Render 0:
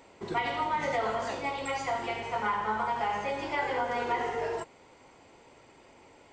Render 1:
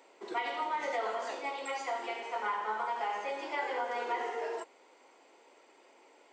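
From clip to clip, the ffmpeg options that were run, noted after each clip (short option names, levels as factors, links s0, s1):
-af "highpass=f=310:w=0.5412,highpass=f=310:w=1.3066,volume=0.631"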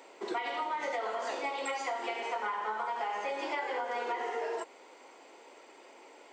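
-af "acompressor=threshold=0.0126:ratio=6,volume=2.11"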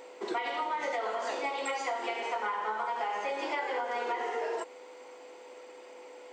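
-af "aeval=exprs='val(0)+0.00316*sin(2*PI*500*n/s)':c=same,volume=1.19"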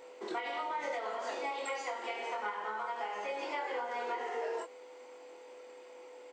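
-filter_complex "[0:a]asplit=2[s0][s1];[s1]adelay=24,volume=0.562[s2];[s0][s2]amix=inputs=2:normalize=0,volume=0.531"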